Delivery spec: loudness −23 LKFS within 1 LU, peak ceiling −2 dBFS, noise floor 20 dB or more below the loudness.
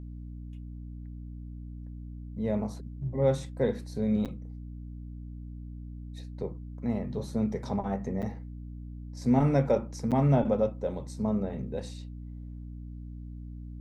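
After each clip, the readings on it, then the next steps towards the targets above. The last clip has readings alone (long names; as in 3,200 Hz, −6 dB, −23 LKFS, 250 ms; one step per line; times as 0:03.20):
number of dropouts 3; longest dropout 7.5 ms; mains hum 60 Hz; hum harmonics up to 300 Hz; level of the hum −38 dBFS; integrated loudness −30.0 LKFS; sample peak −12.0 dBFS; target loudness −23.0 LKFS
→ repair the gap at 0:04.25/0:08.22/0:10.11, 7.5 ms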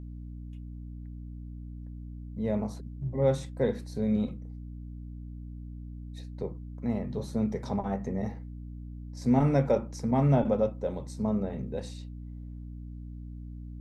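number of dropouts 0; mains hum 60 Hz; hum harmonics up to 300 Hz; level of the hum −38 dBFS
→ hum removal 60 Hz, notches 5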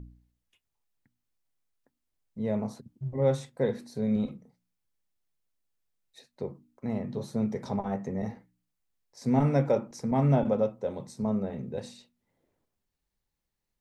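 mains hum none found; integrated loudness −30.0 LKFS; sample peak −12.0 dBFS; target loudness −23.0 LKFS
→ level +7 dB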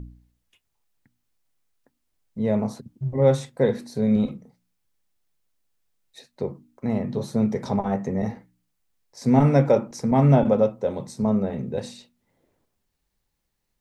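integrated loudness −23.0 LKFS; sample peak −5.0 dBFS; background noise floor −76 dBFS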